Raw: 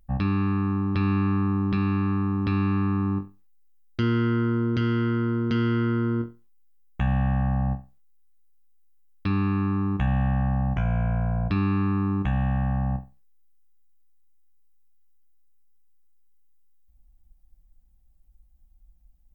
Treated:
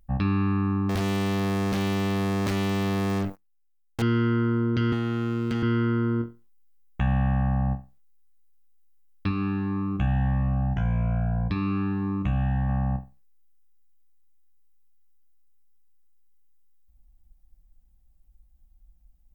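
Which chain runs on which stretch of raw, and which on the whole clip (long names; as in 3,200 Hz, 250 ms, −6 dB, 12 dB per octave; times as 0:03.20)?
0:00.89–0:04.02: leveller curve on the samples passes 5 + hard clipping −25 dBFS
0:04.92–0:05.63: low-shelf EQ 410 Hz −3 dB + hard clipping −22.5 dBFS + multiband upward and downward compressor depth 100%
0:09.29–0:12.69: mains-hum notches 50/100/150/200/250/300/350/400/450 Hz + phaser whose notches keep moving one way rising 1.7 Hz
whole clip: no processing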